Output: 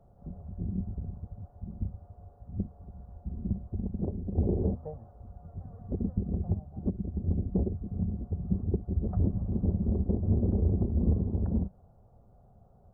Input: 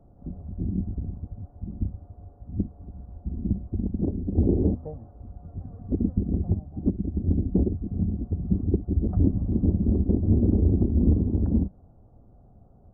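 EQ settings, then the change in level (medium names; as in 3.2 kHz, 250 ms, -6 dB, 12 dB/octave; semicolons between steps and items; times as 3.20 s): bass shelf 140 Hz -6.5 dB; peaking EQ 290 Hz -13 dB 0.55 oct; 0.0 dB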